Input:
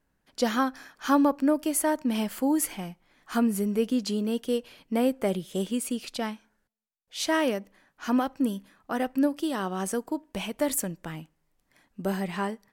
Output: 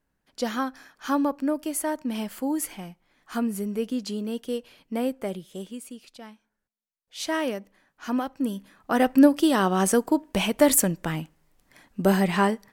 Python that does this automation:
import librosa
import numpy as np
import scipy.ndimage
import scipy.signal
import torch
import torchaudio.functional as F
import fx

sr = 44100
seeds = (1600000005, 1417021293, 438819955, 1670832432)

y = fx.gain(x, sr, db=fx.line((5.09, -2.5), (6.19, -13.0), (7.25, -2.0), (8.36, -2.0), (9.08, 8.5)))